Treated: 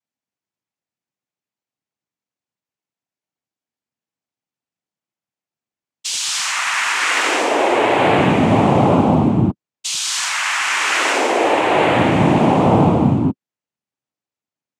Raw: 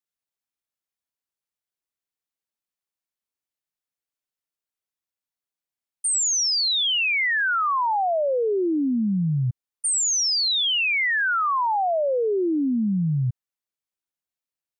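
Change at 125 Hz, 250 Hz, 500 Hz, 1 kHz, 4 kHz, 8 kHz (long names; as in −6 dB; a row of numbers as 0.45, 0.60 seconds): +9.0, +9.0, +8.0, +8.0, 0.0, −0.5 decibels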